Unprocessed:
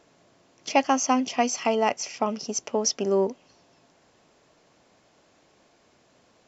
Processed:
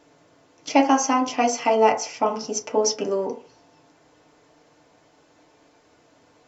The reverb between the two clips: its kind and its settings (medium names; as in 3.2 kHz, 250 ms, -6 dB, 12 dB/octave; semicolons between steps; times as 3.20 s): FDN reverb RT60 0.41 s, low-frequency decay 0.7×, high-frequency decay 0.35×, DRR -1 dB